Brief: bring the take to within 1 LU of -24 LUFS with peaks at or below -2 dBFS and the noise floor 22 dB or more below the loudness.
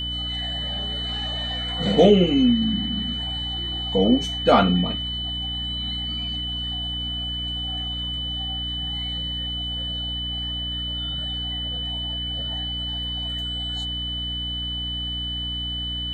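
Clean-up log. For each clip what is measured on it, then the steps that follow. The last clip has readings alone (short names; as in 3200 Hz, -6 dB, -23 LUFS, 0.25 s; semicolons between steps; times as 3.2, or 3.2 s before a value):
hum 60 Hz; harmonics up to 300 Hz; hum level -30 dBFS; steady tone 3000 Hz; tone level -27 dBFS; loudness -24.0 LUFS; peak -3.5 dBFS; loudness target -24.0 LUFS
-> de-hum 60 Hz, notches 5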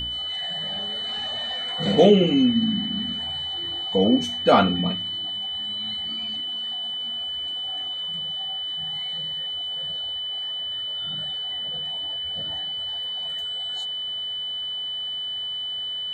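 hum none; steady tone 3000 Hz; tone level -27 dBFS
-> notch 3000 Hz, Q 30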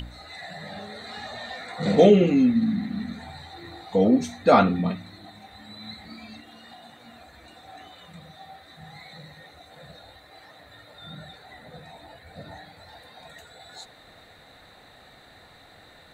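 steady tone none; loudness -22.0 LUFS; peak -3.5 dBFS; loudness target -24.0 LUFS
-> gain -2 dB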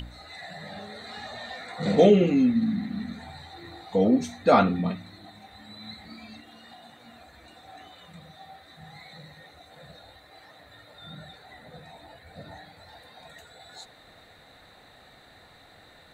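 loudness -24.0 LUFS; peak -5.5 dBFS; noise floor -54 dBFS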